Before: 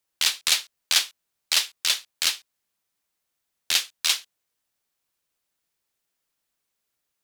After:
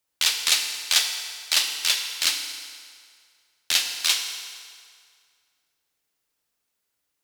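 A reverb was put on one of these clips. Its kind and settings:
feedback delay network reverb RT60 2.1 s, low-frequency decay 0.75×, high-frequency decay 0.85×, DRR 3.5 dB

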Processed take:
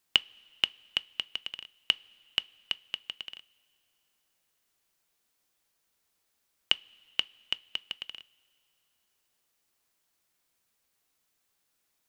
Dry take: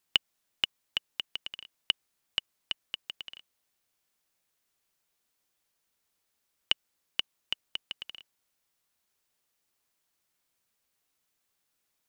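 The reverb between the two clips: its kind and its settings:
coupled-rooms reverb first 0.22 s, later 2.8 s, from −18 dB, DRR 18 dB
level +2 dB

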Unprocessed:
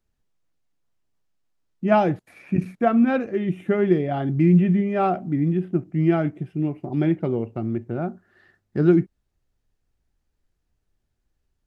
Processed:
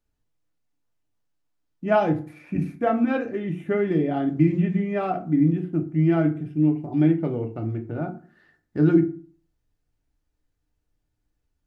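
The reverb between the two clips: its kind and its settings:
feedback delay network reverb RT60 0.4 s, low-frequency decay 1.25×, high-frequency decay 0.65×, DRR 3.5 dB
level −3.5 dB

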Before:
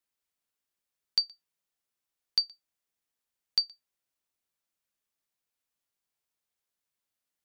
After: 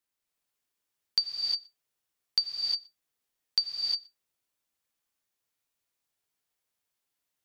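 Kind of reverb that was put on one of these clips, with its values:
reverb whose tail is shaped and stops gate 380 ms rising, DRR −0.5 dB

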